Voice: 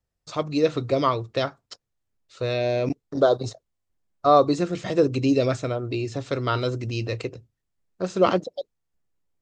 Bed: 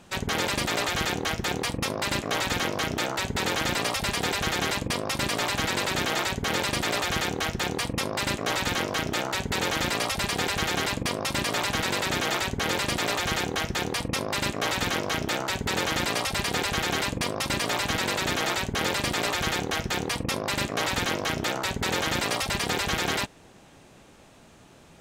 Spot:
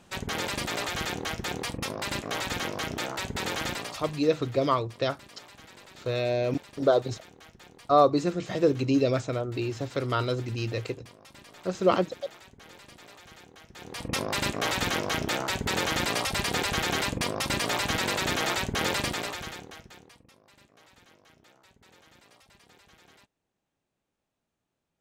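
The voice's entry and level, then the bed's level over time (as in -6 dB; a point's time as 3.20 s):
3.65 s, -3.0 dB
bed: 3.67 s -4.5 dB
4.33 s -23.5 dB
13.66 s -23.5 dB
14.14 s -1 dB
19.00 s -1 dB
20.35 s -31 dB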